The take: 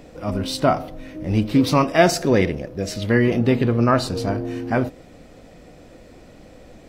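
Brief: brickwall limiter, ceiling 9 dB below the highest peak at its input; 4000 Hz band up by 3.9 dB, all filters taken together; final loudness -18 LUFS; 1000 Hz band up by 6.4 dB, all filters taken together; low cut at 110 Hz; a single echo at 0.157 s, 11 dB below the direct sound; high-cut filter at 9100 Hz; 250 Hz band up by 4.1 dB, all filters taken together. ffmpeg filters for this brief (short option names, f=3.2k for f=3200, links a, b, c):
-af "highpass=110,lowpass=9.1k,equalizer=f=250:t=o:g=4.5,equalizer=f=1k:t=o:g=8.5,equalizer=f=4k:t=o:g=4.5,alimiter=limit=-5dB:level=0:latency=1,aecho=1:1:157:0.282,volume=0.5dB"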